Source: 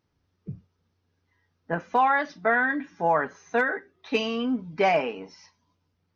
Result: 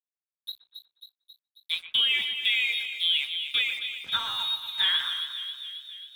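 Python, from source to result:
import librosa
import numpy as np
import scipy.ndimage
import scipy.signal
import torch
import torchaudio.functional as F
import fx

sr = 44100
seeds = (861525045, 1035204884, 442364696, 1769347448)

y = fx.low_shelf(x, sr, hz=260.0, db=-5.0)
y = fx.freq_invert(y, sr, carrier_hz=4000)
y = np.sign(y) * np.maximum(np.abs(y) - 10.0 ** (-45.5 / 20.0), 0.0)
y = fx.echo_split(y, sr, split_hz=2600.0, low_ms=120, high_ms=270, feedback_pct=52, wet_db=-9.5)
y = fx.band_squash(y, sr, depth_pct=40)
y = y * 10.0 ** (-1.5 / 20.0)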